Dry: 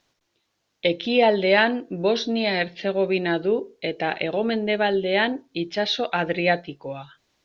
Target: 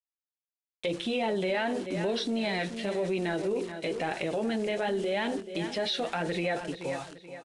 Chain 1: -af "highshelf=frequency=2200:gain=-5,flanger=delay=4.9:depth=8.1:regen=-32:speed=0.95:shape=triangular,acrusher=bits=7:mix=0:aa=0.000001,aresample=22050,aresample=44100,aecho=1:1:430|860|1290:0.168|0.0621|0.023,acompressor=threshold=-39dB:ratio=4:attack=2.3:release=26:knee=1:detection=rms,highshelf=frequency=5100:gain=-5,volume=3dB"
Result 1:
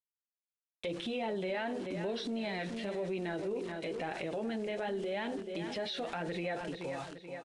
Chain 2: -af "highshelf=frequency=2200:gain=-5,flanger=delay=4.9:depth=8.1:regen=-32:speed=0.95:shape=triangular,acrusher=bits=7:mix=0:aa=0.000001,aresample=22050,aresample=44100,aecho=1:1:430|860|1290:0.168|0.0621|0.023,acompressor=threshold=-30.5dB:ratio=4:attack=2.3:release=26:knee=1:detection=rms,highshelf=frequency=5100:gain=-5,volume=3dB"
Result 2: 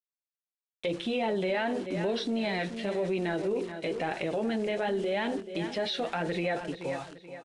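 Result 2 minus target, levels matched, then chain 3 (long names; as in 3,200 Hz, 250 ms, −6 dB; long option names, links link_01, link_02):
8,000 Hz band −4.5 dB
-af "highshelf=frequency=2200:gain=-5,flanger=delay=4.9:depth=8.1:regen=-32:speed=0.95:shape=triangular,acrusher=bits=7:mix=0:aa=0.000001,aresample=22050,aresample=44100,aecho=1:1:430|860|1290:0.168|0.0621|0.023,acompressor=threshold=-30.5dB:ratio=4:attack=2.3:release=26:knee=1:detection=rms,highshelf=frequency=5100:gain=2,volume=3dB"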